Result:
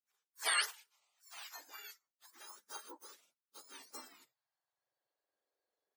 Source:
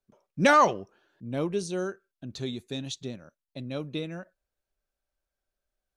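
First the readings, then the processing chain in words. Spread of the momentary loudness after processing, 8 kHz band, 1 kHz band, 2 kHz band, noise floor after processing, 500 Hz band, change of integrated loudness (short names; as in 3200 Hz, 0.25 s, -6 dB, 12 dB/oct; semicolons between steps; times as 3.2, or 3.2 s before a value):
24 LU, -1.0 dB, -20.0 dB, -10.0 dB, under -85 dBFS, -28.5 dB, -11.5 dB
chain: spectrum mirrored in octaves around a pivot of 1600 Hz; high-pass sweep 1600 Hz -> 130 Hz, 1.7–5.66; spectral gate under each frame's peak -20 dB weak; gain +1 dB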